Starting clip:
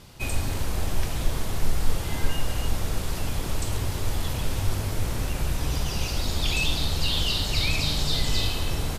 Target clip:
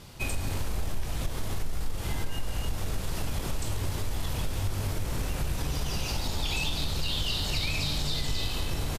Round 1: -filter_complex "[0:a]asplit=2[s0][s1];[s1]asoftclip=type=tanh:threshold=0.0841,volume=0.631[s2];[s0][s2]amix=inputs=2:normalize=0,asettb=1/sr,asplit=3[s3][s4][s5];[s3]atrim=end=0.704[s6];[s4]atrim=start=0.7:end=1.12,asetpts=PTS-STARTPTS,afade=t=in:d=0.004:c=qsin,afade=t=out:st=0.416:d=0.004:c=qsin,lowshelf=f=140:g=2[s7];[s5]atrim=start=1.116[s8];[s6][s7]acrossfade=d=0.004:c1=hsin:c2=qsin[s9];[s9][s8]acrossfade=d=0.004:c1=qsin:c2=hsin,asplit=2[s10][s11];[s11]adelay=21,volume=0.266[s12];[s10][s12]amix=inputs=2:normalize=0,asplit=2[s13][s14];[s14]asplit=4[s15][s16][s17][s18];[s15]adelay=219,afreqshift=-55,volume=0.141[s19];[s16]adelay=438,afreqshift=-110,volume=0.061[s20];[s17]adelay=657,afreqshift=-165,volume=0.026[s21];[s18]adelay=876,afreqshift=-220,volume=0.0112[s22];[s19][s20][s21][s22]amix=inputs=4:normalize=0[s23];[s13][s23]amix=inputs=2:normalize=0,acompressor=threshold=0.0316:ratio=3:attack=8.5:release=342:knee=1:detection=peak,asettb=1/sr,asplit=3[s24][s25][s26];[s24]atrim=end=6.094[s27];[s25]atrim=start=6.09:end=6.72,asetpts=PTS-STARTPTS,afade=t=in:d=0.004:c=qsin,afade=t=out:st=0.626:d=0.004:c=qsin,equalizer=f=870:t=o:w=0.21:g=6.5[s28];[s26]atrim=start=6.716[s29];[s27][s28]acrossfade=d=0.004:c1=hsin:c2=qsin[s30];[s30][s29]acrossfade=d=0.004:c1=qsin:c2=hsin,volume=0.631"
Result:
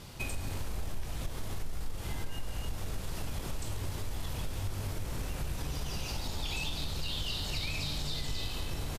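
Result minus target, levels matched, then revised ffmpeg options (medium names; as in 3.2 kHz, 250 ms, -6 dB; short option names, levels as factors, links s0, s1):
compression: peak gain reduction +5.5 dB
-filter_complex "[0:a]asplit=2[s0][s1];[s1]asoftclip=type=tanh:threshold=0.0841,volume=0.631[s2];[s0][s2]amix=inputs=2:normalize=0,asettb=1/sr,asplit=3[s3][s4][s5];[s3]atrim=end=0.704[s6];[s4]atrim=start=0.7:end=1.12,asetpts=PTS-STARTPTS,afade=t=in:d=0.004:c=qsin,afade=t=out:st=0.416:d=0.004:c=qsin,lowshelf=f=140:g=2[s7];[s5]atrim=start=1.116[s8];[s6][s7]acrossfade=d=0.004:c1=hsin:c2=qsin[s9];[s9][s8]acrossfade=d=0.004:c1=qsin:c2=hsin,asplit=2[s10][s11];[s11]adelay=21,volume=0.266[s12];[s10][s12]amix=inputs=2:normalize=0,asplit=2[s13][s14];[s14]asplit=4[s15][s16][s17][s18];[s15]adelay=219,afreqshift=-55,volume=0.141[s19];[s16]adelay=438,afreqshift=-110,volume=0.061[s20];[s17]adelay=657,afreqshift=-165,volume=0.026[s21];[s18]adelay=876,afreqshift=-220,volume=0.0112[s22];[s19][s20][s21][s22]amix=inputs=4:normalize=0[s23];[s13][s23]amix=inputs=2:normalize=0,acompressor=threshold=0.0841:ratio=3:attack=8.5:release=342:knee=1:detection=peak,asettb=1/sr,asplit=3[s24][s25][s26];[s24]atrim=end=6.094[s27];[s25]atrim=start=6.09:end=6.72,asetpts=PTS-STARTPTS,afade=t=in:d=0.004:c=qsin,afade=t=out:st=0.626:d=0.004:c=qsin,equalizer=f=870:t=o:w=0.21:g=6.5[s28];[s26]atrim=start=6.716[s29];[s27][s28]acrossfade=d=0.004:c1=hsin:c2=qsin[s30];[s30][s29]acrossfade=d=0.004:c1=qsin:c2=hsin,volume=0.631"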